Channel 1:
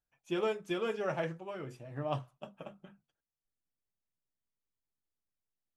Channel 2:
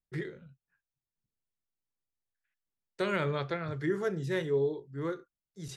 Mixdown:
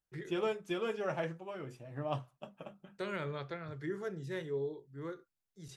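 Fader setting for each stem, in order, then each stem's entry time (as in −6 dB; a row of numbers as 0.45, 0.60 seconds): −1.5, −8.0 decibels; 0.00, 0.00 seconds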